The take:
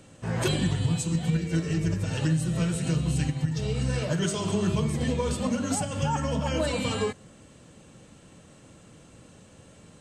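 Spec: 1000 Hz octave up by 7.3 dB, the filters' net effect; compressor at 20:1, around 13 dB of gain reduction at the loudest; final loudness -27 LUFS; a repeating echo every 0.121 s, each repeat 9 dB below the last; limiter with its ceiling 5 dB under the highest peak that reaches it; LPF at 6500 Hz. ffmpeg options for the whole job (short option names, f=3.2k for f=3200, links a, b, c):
-af "lowpass=6.5k,equalizer=f=1k:t=o:g=8.5,acompressor=threshold=-33dB:ratio=20,alimiter=level_in=6dB:limit=-24dB:level=0:latency=1,volume=-6dB,aecho=1:1:121|242|363|484:0.355|0.124|0.0435|0.0152,volume=11.5dB"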